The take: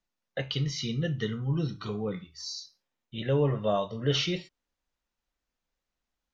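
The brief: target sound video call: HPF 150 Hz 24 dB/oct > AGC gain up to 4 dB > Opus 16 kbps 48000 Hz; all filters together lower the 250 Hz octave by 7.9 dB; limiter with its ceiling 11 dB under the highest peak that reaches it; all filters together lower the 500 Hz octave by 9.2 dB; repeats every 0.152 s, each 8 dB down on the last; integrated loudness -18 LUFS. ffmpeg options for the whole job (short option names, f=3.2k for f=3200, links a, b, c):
-af "equalizer=f=250:t=o:g=-8.5,equalizer=f=500:t=o:g=-9,alimiter=level_in=3.5dB:limit=-24dB:level=0:latency=1,volume=-3.5dB,highpass=f=150:w=0.5412,highpass=f=150:w=1.3066,aecho=1:1:152|304|456|608|760:0.398|0.159|0.0637|0.0255|0.0102,dynaudnorm=m=4dB,volume=21dB" -ar 48000 -c:a libopus -b:a 16k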